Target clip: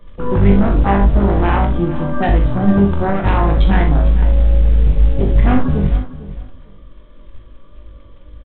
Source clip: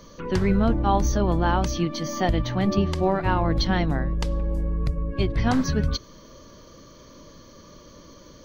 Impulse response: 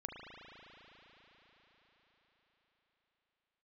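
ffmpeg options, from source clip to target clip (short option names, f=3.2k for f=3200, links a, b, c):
-filter_complex "[0:a]afwtdn=0.0224,lowshelf=f=61:g=9.5,asplit=2[a][b];[b]acompressor=threshold=-34dB:ratio=5,volume=0dB[c];[a][c]amix=inputs=2:normalize=0,acrusher=bits=6:mode=log:mix=0:aa=0.000001,aresample=8000,aeval=exprs='0.631*sin(PI/2*2.24*val(0)/0.631)':c=same,aresample=44100,aecho=1:1:451|902:0.168|0.0285[d];[1:a]atrim=start_sample=2205,atrim=end_sample=6615,asetrate=79380,aresample=44100[e];[d][e]afir=irnorm=-1:irlink=0,volume=4.5dB"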